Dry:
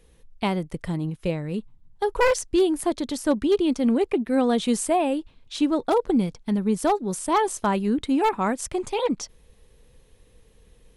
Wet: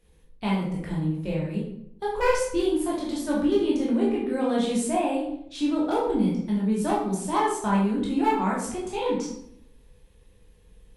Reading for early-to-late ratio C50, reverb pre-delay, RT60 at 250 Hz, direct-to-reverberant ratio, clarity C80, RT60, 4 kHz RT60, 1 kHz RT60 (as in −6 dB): 2.5 dB, 13 ms, 0.85 s, −5.5 dB, 7.0 dB, 0.70 s, 0.50 s, 0.65 s